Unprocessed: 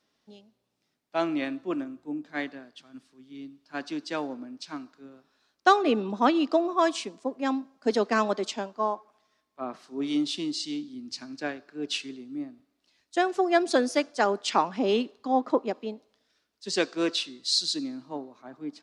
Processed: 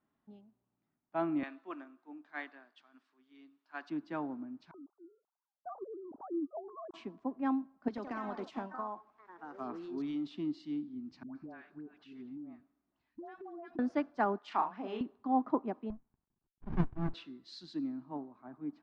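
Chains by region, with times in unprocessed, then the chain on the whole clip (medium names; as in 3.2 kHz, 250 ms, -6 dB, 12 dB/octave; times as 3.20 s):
1.43–3.90 s: high-pass 370 Hz + tilt EQ +4 dB/octave
4.71–6.94 s: formants replaced by sine waves + compression 1.5:1, threshold -46 dBFS + Gaussian low-pass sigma 9.8 samples
7.88–10.31 s: treble shelf 2.4 kHz +11 dB + compression 12:1, threshold -28 dBFS + ever faster or slower copies 96 ms, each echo +3 st, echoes 3, each echo -6 dB
11.23–13.79 s: phase dispersion highs, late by 125 ms, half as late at 730 Hz + compression 12:1, threshold -38 dBFS
14.38–15.01 s: high-pass 990 Hz 6 dB/octave + doubling 37 ms -4 dB
15.90–17.14 s: companding laws mixed up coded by A + sliding maximum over 65 samples
whole clip: low-pass 1.1 kHz 12 dB/octave; peaking EQ 500 Hz -12 dB 0.73 oct; trim -1.5 dB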